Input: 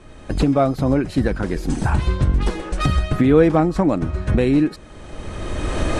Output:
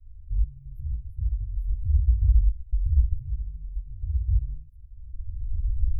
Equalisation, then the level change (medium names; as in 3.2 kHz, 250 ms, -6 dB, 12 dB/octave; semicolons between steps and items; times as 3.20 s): inverse Chebyshev band-stop 180–800 Hz, stop band 50 dB; inverse Chebyshev band-stop 690–8200 Hz, stop band 60 dB; 0.0 dB